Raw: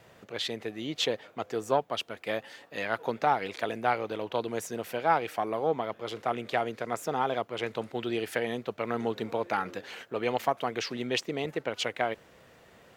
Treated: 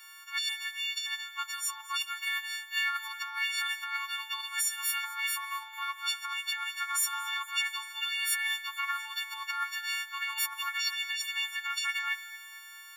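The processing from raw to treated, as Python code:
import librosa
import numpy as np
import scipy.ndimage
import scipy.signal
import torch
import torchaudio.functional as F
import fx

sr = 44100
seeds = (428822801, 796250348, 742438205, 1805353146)

y = fx.freq_snap(x, sr, grid_st=4)
y = fx.rev_fdn(y, sr, rt60_s=0.84, lf_ratio=1.0, hf_ratio=0.6, size_ms=66.0, drr_db=15.0)
y = fx.over_compress(y, sr, threshold_db=-29.0, ratio=-1.0)
y = scipy.signal.sosfilt(scipy.signal.butter(12, 1000.0, 'highpass', fs=sr, output='sos'), y)
y = fx.echo_feedback(y, sr, ms=225, feedback_pct=52, wet_db=-20)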